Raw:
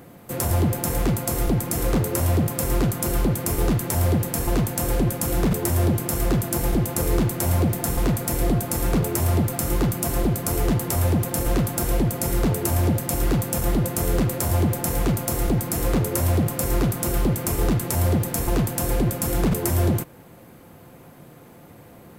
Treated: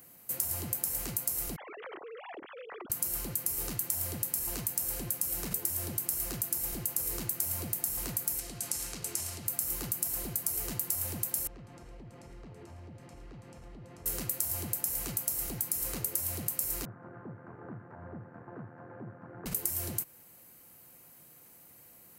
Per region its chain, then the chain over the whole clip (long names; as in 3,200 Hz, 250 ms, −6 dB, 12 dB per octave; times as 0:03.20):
0:01.56–0:02.90: three sine waves on the formant tracks + downward compressor 4 to 1, threshold −25 dBFS
0:08.39–0:09.46: low-pass filter 6,700 Hz + high-shelf EQ 2,600 Hz +9.5 dB + downward compressor 3 to 1, threshold −24 dBFS
0:11.47–0:14.06: notch filter 1,500 Hz, Q 15 + downward compressor 10 to 1, threshold −24 dBFS + head-to-tape spacing loss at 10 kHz 36 dB
0:16.85–0:19.46: amplitude modulation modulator 81 Hz, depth 35% + Chebyshev band-pass filter 100–1,600 Hz, order 4
whole clip: first-order pre-emphasis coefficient 0.9; notch filter 3,500 Hz, Q 9.5; downward compressor, threshold −28 dBFS